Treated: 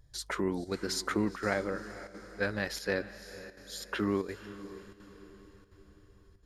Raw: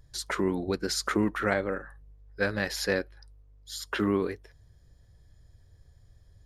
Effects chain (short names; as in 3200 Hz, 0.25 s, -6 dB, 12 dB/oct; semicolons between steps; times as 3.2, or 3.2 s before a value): diffused feedback echo 0.498 s, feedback 48%, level -14 dB; chopper 1.4 Hz, depth 60%, duty 90%; gain -4 dB